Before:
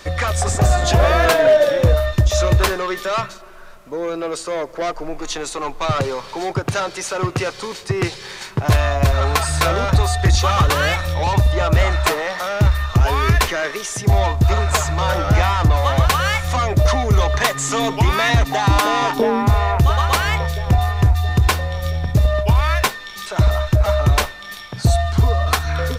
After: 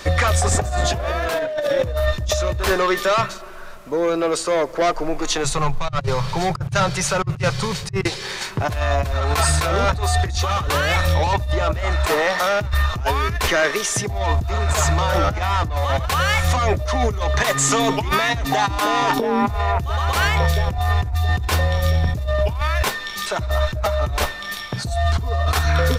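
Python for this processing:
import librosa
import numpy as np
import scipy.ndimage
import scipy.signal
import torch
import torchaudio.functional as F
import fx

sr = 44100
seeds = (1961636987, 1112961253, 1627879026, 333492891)

y = fx.low_shelf_res(x, sr, hz=200.0, db=12.0, q=3.0, at=(5.44, 8.04))
y = fx.over_compress(y, sr, threshold_db=-20.0, ratio=-1.0)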